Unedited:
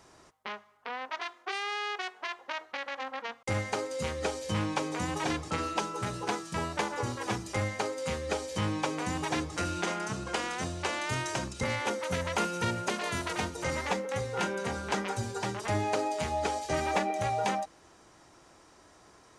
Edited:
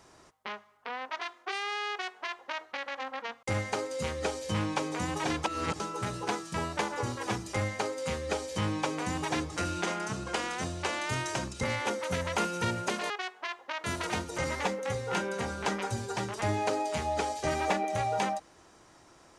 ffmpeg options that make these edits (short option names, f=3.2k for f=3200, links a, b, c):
-filter_complex "[0:a]asplit=5[a][b][c][d][e];[a]atrim=end=5.442[f];[b]atrim=start=5.438:end=5.802,asetpts=PTS-STARTPTS,areverse[g];[c]atrim=start=5.798:end=13.102[h];[d]atrim=start=1.898:end=2.642[i];[e]atrim=start=13.098[j];[f][g]acrossfade=d=0.004:c1=hsin:c2=hsin[k];[k][h]acrossfade=d=0.004:c1=hsin:c2=hsin[l];[l][i]acrossfade=d=0.004:c1=hsin:c2=hsin[m];[m][j]acrossfade=d=0.004:c1=hsin:c2=hsin"